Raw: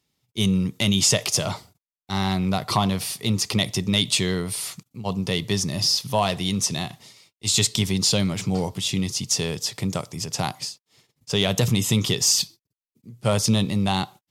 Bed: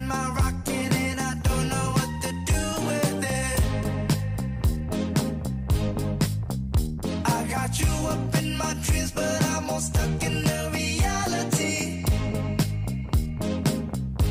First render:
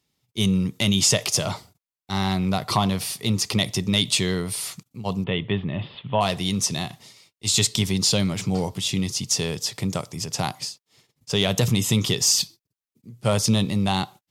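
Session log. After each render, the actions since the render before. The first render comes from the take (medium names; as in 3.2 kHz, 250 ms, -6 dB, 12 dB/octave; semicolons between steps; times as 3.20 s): 5.24–6.21 s: steep low-pass 3.4 kHz 72 dB/octave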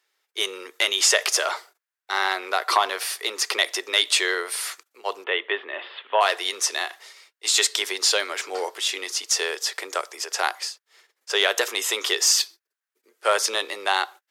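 steep high-pass 370 Hz 48 dB/octave; peaking EQ 1.6 kHz +13.5 dB 0.84 oct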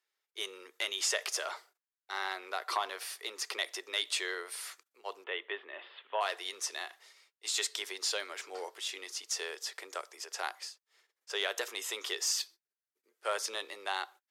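trim -13 dB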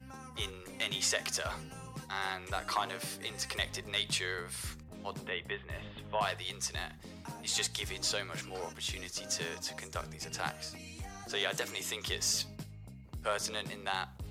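add bed -21.5 dB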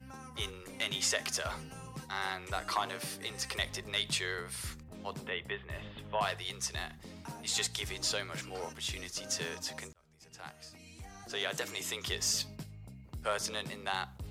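9.93–11.82 s: fade in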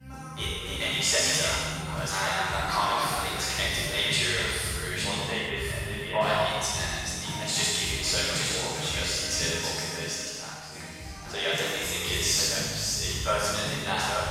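chunks repeated in reverse 572 ms, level -4 dB; gated-style reverb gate 490 ms falling, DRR -7.5 dB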